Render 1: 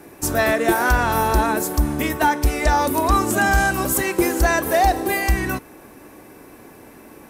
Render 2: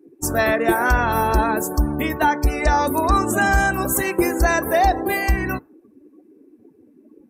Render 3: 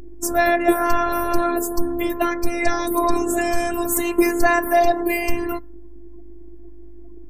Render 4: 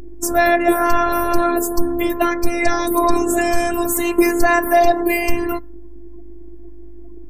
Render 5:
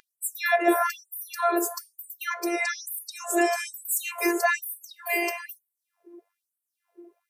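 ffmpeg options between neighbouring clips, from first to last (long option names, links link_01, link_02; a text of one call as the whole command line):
ffmpeg -i in.wav -af "afftdn=noise_reduction=30:noise_floor=-33" out.wav
ffmpeg -i in.wav -af "aeval=exprs='val(0)+0.02*(sin(2*PI*50*n/s)+sin(2*PI*2*50*n/s)/2+sin(2*PI*3*50*n/s)/3+sin(2*PI*4*50*n/s)/4+sin(2*PI*5*50*n/s)/5)':channel_layout=same,afftfilt=real='hypot(re,im)*cos(PI*b)':imag='0':win_size=512:overlap=0.75,volume=3dB" out.wav
ffmpeg -i in.wav -af "alimiter=level_in=4.5dB:limit=-1dB:release=50:level=0:latency=1,volume=-1dB" out.wav
ffmpeg -i in.wav -af "flanger=delay=2.4:depth=5.9:regen=85:speed=0.28:shape=triangular,afftfilt=real='re*gte(b*sr/1024,300*pow(7800/300,0.5+0.5*sin(2*PI*1.1*pts/sr)))':imag='im*gte(b*sr/1024,300*pow(7800/300,0.5+0.5*sin(2*PI*1.1*pts/sr)))':win_size=1024:overlap=0.75" out.wav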